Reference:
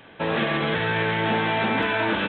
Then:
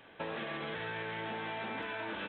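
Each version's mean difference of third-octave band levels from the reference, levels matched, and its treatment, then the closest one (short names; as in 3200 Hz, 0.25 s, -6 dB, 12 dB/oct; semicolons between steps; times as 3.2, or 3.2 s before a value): 1.5 dB: tone controls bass -7 dB, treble -1 dB; compressor 10:1, threshold -28 dBFS, peak gain reduction 8.5 dB; low shelf 85 Hz +7 dB; gain -8 dB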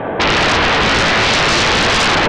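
9.5 dB: LPF 1300 Hz 12 dB/oct; bell 640 Hz +7.5 dB 1.4 oct; in parallel at +1 dB: compressor 5:1, threshold -35 dBFS, peak gain reduction 17 dB; on the sum: sine folder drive 17 dB, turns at -8 dBFS; gain -2 dB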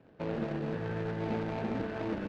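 6.5 dB: median filter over 41 samples; LPF 3600 Hz 12 dB/oct; gain -7 dB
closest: first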